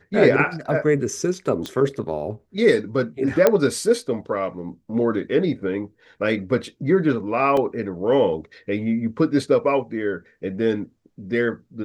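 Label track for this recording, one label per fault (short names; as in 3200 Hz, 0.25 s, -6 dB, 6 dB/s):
1.660000	1.660000	pop -15 dBFS
3.470000	3.470000	pop -3 dBFS
7.570000	7.570000	gap 2.8 ms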